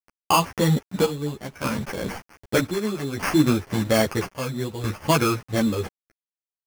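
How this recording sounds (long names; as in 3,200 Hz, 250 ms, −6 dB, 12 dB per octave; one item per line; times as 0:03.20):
a quantiser's noise floor 8 bits, dither none
chopped level 0.62 Hz, depth 65%, duty 65%
aliases and images of a low sample rate 3,800 Hz, jitter 0%
a shimmering, thickened sound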